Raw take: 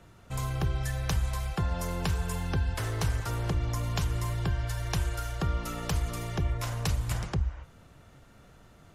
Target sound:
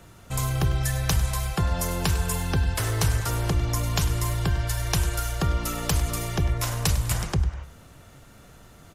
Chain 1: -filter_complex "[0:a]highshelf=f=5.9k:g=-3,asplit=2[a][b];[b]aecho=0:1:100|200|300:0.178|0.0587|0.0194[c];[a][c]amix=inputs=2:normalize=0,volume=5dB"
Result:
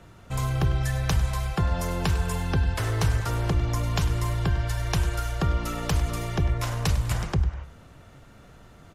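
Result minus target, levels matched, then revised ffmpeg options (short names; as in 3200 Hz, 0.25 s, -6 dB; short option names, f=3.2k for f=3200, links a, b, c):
8000 Hz band -6.5 dB
-filter_complex "[0:a]highshelf=f=5.9k:g=9,asplit=2[a][b];[b]aecho=0:1:100|200|300:0.178|0.0587|0.0194[c];[a][c]amix=inputs=2:normalize=0,volume=5dB"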